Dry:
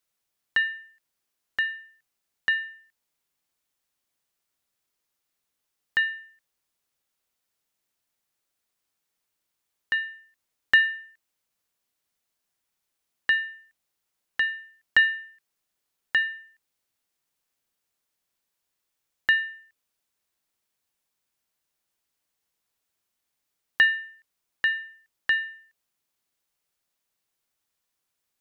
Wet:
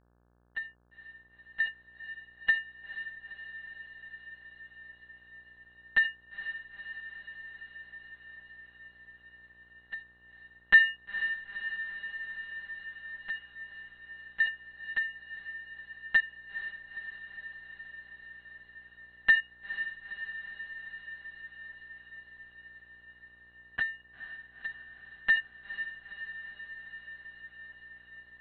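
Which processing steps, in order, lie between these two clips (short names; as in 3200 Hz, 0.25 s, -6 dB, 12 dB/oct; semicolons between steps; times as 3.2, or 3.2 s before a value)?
crossover distortion -36 dBFS; monotone LPC vocoder at 8 kHz 200 Hz; step gate "x...xxx." 75 bpm -12 dB; on a send: diffused feedback echo 0.473 s, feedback 76%, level -11 dB; on the sum: buzz 60 Hz, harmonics 29, -68 dBFS -5 dB/oct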